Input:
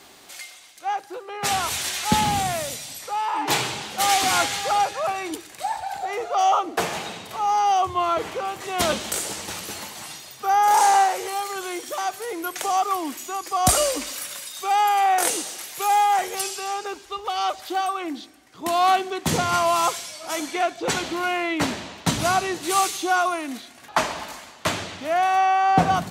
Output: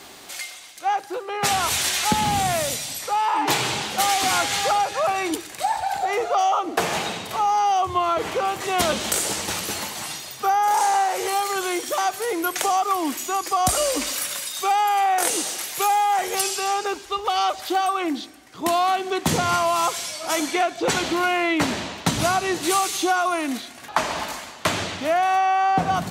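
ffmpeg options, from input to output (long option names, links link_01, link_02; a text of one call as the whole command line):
ffmpeg -i in.wav -af "acompressor=threshold=-23dB:ratio=6,volume=5.5dB" out.wav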